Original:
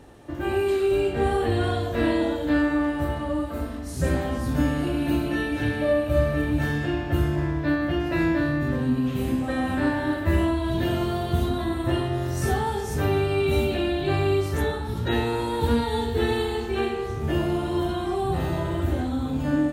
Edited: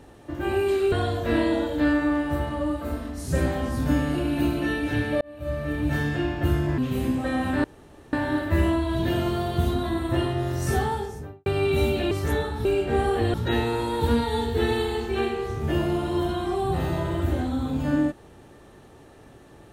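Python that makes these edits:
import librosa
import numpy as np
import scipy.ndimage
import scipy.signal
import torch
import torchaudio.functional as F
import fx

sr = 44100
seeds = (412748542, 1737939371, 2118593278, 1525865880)

y = fx.studio_fade_out(x, sr, start_s=12.57, length_s=0.64)
y = fx.edit(y, sr, fx.move(start_s=0.92, length_s=0.69, to_s=14.94),
    fx.fade_in_span(start_s=5.9, length_s=0.76),
    fx.cut(start_s=7.47, length_s=1.55),
    fx.insert_room_tone(at_s=9.88, length_s=0.49),
    fx.cut(start_s=13.86, length_s=0.54), tone=tone)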